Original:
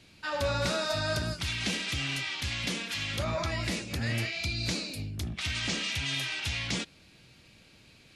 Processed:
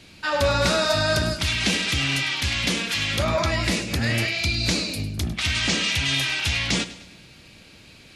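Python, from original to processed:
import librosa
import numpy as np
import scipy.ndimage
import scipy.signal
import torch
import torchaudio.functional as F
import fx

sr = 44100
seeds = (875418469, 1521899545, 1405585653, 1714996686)

y = fx.peak_eq(x, sr, hz=120.0, db=-3.5, octaves=0.29)
y = fx.echo_feedback(y, sr, ms=102, feedback_pct=48, wet_db=-15.5)
y = y * 10.0 ** (9.0 / 20.0)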